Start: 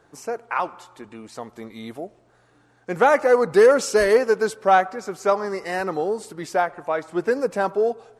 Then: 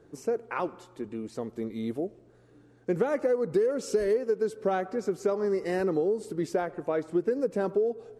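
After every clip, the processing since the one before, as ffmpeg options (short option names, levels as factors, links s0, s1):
-af "lowshelf=f=580:t=q:w=1.5:g=9.5,acompressor=threshold=0.158:ratio=8,volume=0.447"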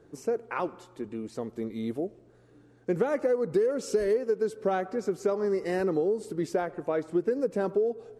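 -af anull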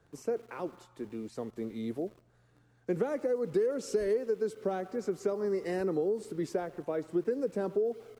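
-filter_complex "[0:a]acrossover=split=220|580|4200[s0][s1][s2][s3];[s1]aeval=exprs='val(0)*gte(abs(val(0)),0.00237)':c=same[s4];[s2]alimiter=level_in=2:limit=0.0631:level=0:latency=1:release=286,volume=0.501[s5];[s0][s4][s5][s3]amix=inputs=4:normalize=0,volume=0.668"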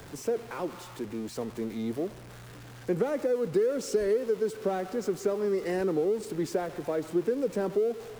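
-af "aeval=exprs='val(0)+0.5*0.00631*sgn(val(0))':c=same,volume=1.33"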